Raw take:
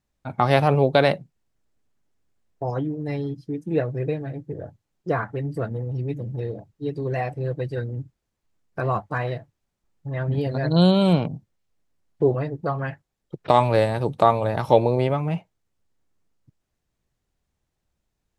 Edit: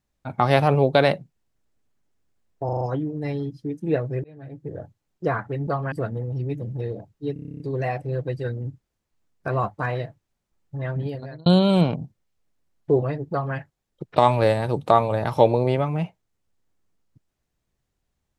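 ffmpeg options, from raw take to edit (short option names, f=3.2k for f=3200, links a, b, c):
-filter_complex "[0:a]asplit=18[a][b][c][d][e][f][g][h][i][j][k][l][m][n][o][p][q][r];[a]atrim=end=2.692[s];[b]atrim=start=2.648:end=2.692[t];[c]atrim=start=2.648:end=2.692[u];[d]atrim=start=2.648:end=2.692[v];[e]atrim=start=2.648:end=4.08,asetpts=PTS-STARTPTS,afade=t=out:st=1.428:d=0.004:c=hsin[w];[f]atrim=start=4.08:end=5.512,asetpts=PTS-STARTPTS,afade=t=in:d=0.51[x];[g]atrim=start=12.628:end=12.882[y];[h]atrim=start=5.508:end=6.952[z];[i]atrim=start=6.918:end=6.952[aa];[j]atrim=start=6.918:end=6.952[ab];[k]atrim=start=6.918:end=6.952[ac];[l]atrim=start=6.918:end=6.952[ad];[m]atrim=start=6.918:end=6.952[ae];[n]atrim=start=6.918:end=6.952[af];[o]atrim=start=6.918:end=6.952[ag];[p]atrim=start=6.918:end=6.952[ah];[q]atrim=start=6.918:end=10.78,asetpts=PTS-STARTPTS,afade=t=out:st=3.192:d=0.67[ai];[r]atrim=start=10.78,asetpts=PTS-STARTPTS,afade=t=in:d=0.004:c=hsin[aj];[s][t]acrossfade=d=0.004:c1=hsin:c2=hsin[ak];[ak][u]acrossfade=d=0.004:c1=hsin:c2=hsin[al];[al][v]acrossfade=d=0.004:c1=hsin:c2=hsin[am];[w][x]concat=n=2:v=0:a=1[an];[am][an]acrossfade=d=0.004:c1=hsin:c2=hsin[ao];[ao][y]acrossfade=d=0.004:c1=hsin:c2=hsin[ap];[ap][z]acrossfade=d=0.004:c1=hsin:c2=hsin[aq];[aq][aa]acrossfade=d=0.004:c1=hsin:c2=hsin[ar];[ar][ab]acrossfade=d=0.004:c1=hsin:c2=hsin[as];[as][ac]acrossfade=d=0.004:c1=hsin:c2=hsin[at];[at][ad]acrossfade=d=0.004:c1=hsin:c2=hsin[au];[au][ae]acrossfade=d=0.004:c1=hsin:c2=hsin[av];[av][af]acrossfade=d=0.004:c1=hsin:c2=hsin[aw];[aw][ag]acrossfade=d=0.004:c1=hsin:c2=hsin[ax];[ax][ah]acrossfade=d=0.004:c1=hsin:c2=hsin[ay];[ai][aj]concat=n=2:v=0:a=1[az];[ay][az]acrossfade=d=0.004:c1=hsin:c2=hsin"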